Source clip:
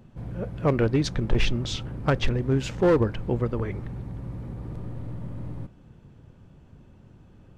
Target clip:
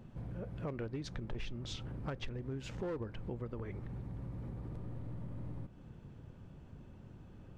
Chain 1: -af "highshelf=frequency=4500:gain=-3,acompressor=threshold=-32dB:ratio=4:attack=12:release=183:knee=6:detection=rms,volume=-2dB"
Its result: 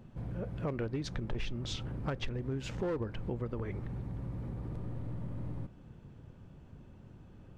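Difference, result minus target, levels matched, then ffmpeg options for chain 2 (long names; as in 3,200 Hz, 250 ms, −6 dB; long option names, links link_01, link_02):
downward compressor: peak gain reduction −5 dB
-af "highshelf=frequency=4500:gain=-3,acompressor=threshold=-38.5dB:ratio=4:attack=12:release=183:knee=6:detection=rms,volume=-2dB"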